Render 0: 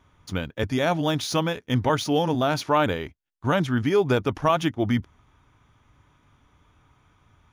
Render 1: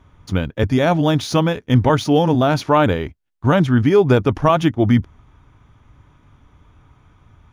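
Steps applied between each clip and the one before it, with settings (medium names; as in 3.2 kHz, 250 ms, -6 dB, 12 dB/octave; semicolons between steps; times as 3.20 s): tilt EQ -1.5 dB/octave; trim +5.5 dB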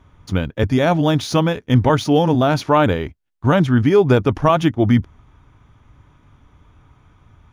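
short-mantissa float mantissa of 8-bit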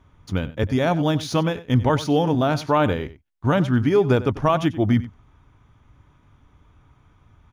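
echo from a far wall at 16 m, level -16 dB; trim -4.5 dB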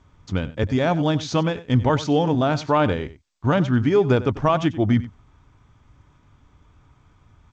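G.722 64 kbps 16 kHz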